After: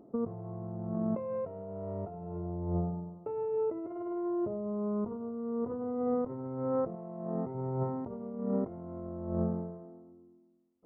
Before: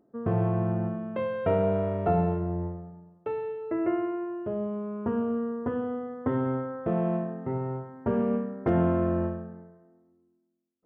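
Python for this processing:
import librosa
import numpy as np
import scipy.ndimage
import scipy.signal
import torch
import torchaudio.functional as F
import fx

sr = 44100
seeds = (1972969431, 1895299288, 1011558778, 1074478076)

y = scipy.signal.savgol_filter(x, 65, 4, mode='constant')
y = fx.over_compress(y, sr, threshold_db=-38.0, ratio=-1.0)
y = fx.low_shelf(y, sr, hz=450.0, db=-5.5, at=(6.95, 7.55))
y = y * 10.0 ** (2.0 / 20.0)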